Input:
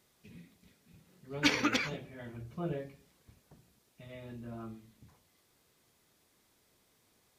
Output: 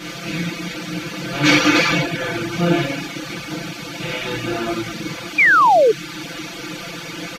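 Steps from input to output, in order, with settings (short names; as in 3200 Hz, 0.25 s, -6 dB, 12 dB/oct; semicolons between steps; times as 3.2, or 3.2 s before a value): per-bin compression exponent 0.4; comb 5.9 ms, depth 89%; non-linear reverb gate 0.33 s falling, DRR -7.5 dB; painted sound fall, 5.38–5.92, 410–2500 Hz -14 dBFS; reverb removal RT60 0.61 s; gain +2.5 dB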